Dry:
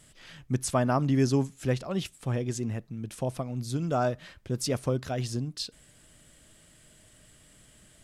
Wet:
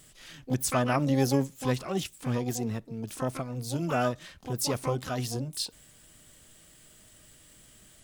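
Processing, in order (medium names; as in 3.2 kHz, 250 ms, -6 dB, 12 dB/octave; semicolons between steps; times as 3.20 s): treble shelf 2.4 kHz +4.5 dB; harmony voices +12 st -6 dB; trim -2 dB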